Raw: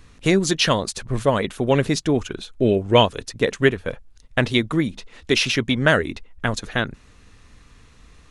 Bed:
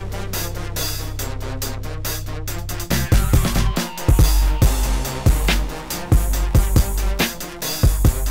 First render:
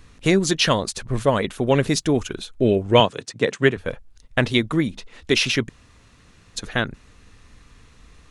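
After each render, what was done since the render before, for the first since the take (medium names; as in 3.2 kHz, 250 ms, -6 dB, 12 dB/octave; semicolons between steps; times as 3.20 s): 1.87–2.49 s: treble shelf 7.4 kHz +7.5 dB; 3.00–3.77 s: Chebyshev band-pass 120–8700 Hz, order 3; 5.69–6.56 s: room tone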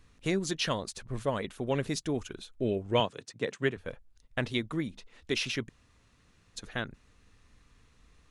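trim -12 dB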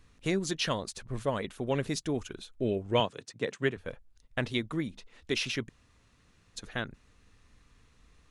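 no audible change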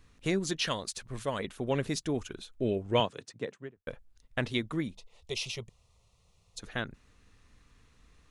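0.67–1.39 s: tilt shelf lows -4 dB, about 1.4 kHz; 3.17–3.87 s: studio fade out; 4.93–6.60 s: static phaser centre 670 Hz, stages 4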